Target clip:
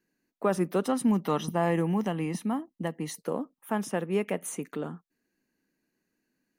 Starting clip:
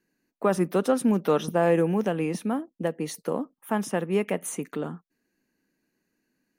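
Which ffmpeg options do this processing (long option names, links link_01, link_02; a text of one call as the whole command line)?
ffmpeg -i in.wav -filter_complex "[0:a]asettb=1/sr,asplit=3[link_01][link_02][link_03];[link_01]atrim=end=0.844[link_04];[link_02]atrim=start=0.84:end=3.18,asetpts=PTS-STARTPTS,afade=type=in:duration=0.004:curve=qsin,afade=type=out:start_time=2.336:duration=0.004:curve=qsin,aecho=1:1:1:0.48,atrim=end_sample=103194[link_05];[link_03]atrim=start=3.176[link_06];[link_04][link_05]acrossfade=duration=0.004:curve1=hsin:curve2=qsin[link_07];[link_07][link_06]acrossfade=duration=0.004:curve1=qsin:curve2=hsin,volume=-3dB" out.wav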